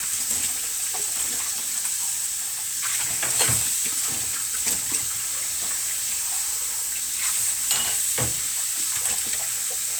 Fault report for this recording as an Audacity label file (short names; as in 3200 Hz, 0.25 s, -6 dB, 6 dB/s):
5.150000	6.350000	clipped -22 dBFS